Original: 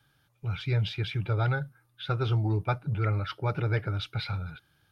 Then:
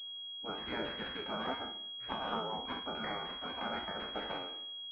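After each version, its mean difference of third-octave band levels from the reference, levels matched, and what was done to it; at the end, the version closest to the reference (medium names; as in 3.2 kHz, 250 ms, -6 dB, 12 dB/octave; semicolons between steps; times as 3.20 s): 12.0 dB: spectral sustain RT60 0.64 s; high-pass 84 Hz 12 dB/octave; spectral gate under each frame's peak -20 dB weak; class-D stage that switches slowly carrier 3.3 kHz; trim +5 dB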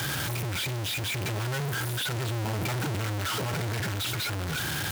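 16.0 dB: one-bit comparator; high-pass 72 Hz; band-stop 1.2 kHz, Q 21; gain riding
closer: first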